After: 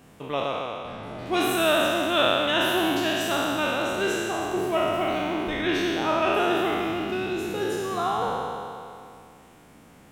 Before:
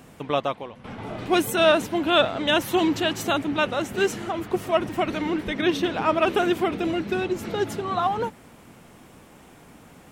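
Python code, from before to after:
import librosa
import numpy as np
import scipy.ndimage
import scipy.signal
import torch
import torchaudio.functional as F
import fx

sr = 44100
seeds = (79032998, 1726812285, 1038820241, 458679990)

y = fx.spec_trails(x, sr, decay_s=2.46)
y = y * 10.0 ** (-6.5 / 20.0)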